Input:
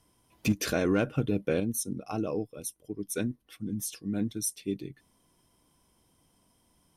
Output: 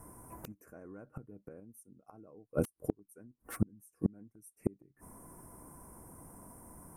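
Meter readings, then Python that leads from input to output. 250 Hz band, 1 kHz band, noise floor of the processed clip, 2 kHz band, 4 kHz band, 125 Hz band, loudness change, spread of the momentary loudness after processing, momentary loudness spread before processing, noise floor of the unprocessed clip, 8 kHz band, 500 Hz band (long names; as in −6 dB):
−9.0 dB, −10.0 dB, −81 dBFS, −17.0 dB, below −20 dB, −7.0 dB, −9.0 dB, 19 LU, 11 LU, −69 dBFS, −17.0 dB, −9.5 dB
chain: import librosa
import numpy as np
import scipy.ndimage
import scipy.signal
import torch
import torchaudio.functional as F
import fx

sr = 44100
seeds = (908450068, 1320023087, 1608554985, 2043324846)

y = fx.gate_flip(x, sr, shuts_db=-31.0, range_db=-39)
y = scipy.signal.sosfilt(scipy.signal.cheby1(2, 1.0, [1300.0, 9400.0], 'bandstop', fs=sr, output='sos'), y)
y = fx.slew_limit(y, sr, full_power_hz=9.9)
y = y * 10.0 ** (16.0 / 20.0)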